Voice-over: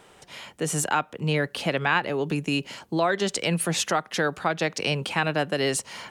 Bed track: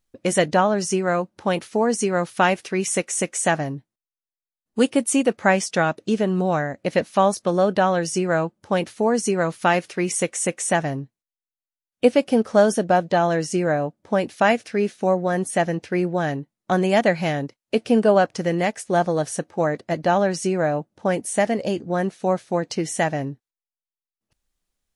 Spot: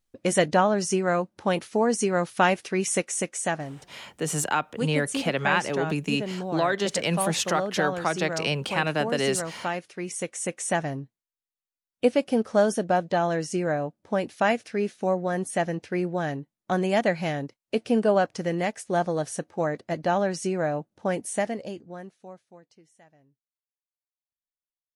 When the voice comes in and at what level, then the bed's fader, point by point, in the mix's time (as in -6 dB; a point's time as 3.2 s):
3.60 s, -1.0 dB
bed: 2.97 s -2.5 dB
3.94 s -11 dB
9.92 s -11 dB
10.7 s -5 dB
21.33 s -5 dB
22.95 s -35 dB